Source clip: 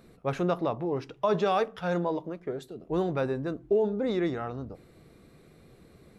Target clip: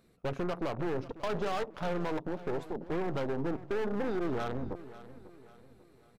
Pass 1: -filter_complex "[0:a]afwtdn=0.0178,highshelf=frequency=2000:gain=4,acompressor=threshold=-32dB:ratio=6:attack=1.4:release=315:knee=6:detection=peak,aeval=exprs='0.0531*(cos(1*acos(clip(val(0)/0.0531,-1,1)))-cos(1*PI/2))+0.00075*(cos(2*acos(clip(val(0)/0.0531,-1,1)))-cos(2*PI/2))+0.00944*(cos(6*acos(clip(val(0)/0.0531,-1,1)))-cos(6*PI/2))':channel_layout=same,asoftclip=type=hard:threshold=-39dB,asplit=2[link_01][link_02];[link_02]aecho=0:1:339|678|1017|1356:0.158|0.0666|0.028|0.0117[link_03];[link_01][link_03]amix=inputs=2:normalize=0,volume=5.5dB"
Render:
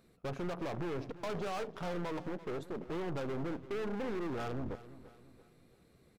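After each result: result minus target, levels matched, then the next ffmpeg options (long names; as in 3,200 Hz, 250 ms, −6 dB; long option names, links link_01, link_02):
echo 204 ms early; hard clipping: distortion +7 dB
-filter_complex "[0:a]afwtdn=0.0178,highshelf=frequency=2000:gain=4,acompressor=threshold=-32dB:ratio=6:attack=1.4:release=315:knee=6:detection=peak,aeval=exprs='0.0531*(cos(1*acos(clip(val(0)/0.0531,-1,1)))-cos(1*PI/2))+0.00075*(cos(2*acos(clip(val(0)/0.0531,-1,1)))-cos(2*PI/2))+0.00944*(cos(6*acos(clip(val(0)/0.0531,-1,1)))-cos(6*PI/2))':channel_layout=same,asoftclip=type=hard:threshold=-39dB,asplit=2[link_01][link_02];[link_02]aecho=0:1:543|1086|1629|2172:0.158|0.0666|0.028|0.0117[link_03];[link_01][link_03]amix=inputs=2:normalize=0,volume=5.5dB"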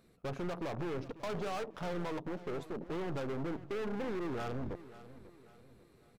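hard clipping: distortion +7 dB
-filter_complex "[0:a]afwtdn=0.0178,highshelf=frequency=2000:gain=4,acompressor=threshold=-32dB:ratio=6:attack=1.4:release=315:knee=6:detection=peak,aeval=exprs='0.0531*(cos(1*acos(clip(val(0)/0.0531,-1,1)))-cos(1*PI/2))+0.00075*(cos(2*acos(clip(val(0)/0.0531,-1,1)))-cos(2*PI/2))+0.00944*(cos(6*acos(clip(val(0)/0.0531,-1,1)))-cos(6*PI/2))':channel_layout=same,asoftclip=type=hard:threshold=-32dB,asplit=2[link_01][link_02];[link_02]aecho=0:1:543|1086|1629|2172:0.158|0.0666|0.028|0.0117[link_03];[link_01][link_03]amix=inputs=2:normalize=0,volume=5.5dB"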